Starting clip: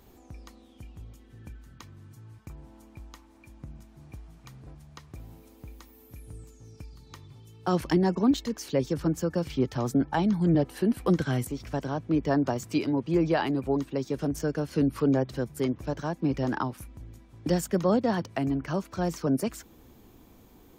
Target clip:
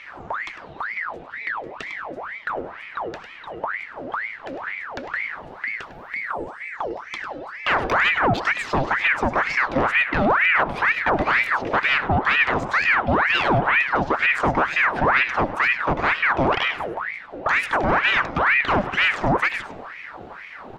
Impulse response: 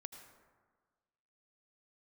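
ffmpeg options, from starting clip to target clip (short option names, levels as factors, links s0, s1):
-filter_complex "[0:a]bandreject=f=550:w=14,alimiter=limit=0.0631:level=0:latency=1:release=221,adynamicsmooth=sensitivity=4.5:basefreq=3600,aeval=exprs='0.0631*sin(PI/2*1.41*val(0)/0.0631)':c=same,aecho=1:1:102:0.251,asplit=2[s0][s1];[1:a]atrim=start_sample=2205,asetrate=57330,aresample=44100,lowpass=4300[s2];[s1][s2]afir=irnorm=-1:irlink=0,volume=2.82[s3];[s0][s3]amix=inputs=2:normalize=0,aeval=exprs='val(0)*sin(2*PI*1300*n/s+1300*0.7/2.1*sin(2*PI*2.1*n/s))':c=same,volume=1.78"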